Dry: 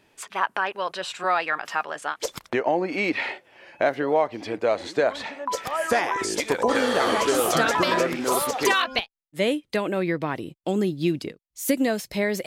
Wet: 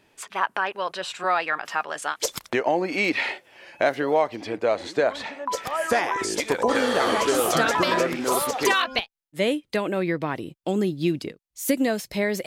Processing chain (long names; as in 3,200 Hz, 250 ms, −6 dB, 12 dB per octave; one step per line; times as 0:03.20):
0:01.90–0:04.36: high-shelf EQ 3,400 Hz +8 dB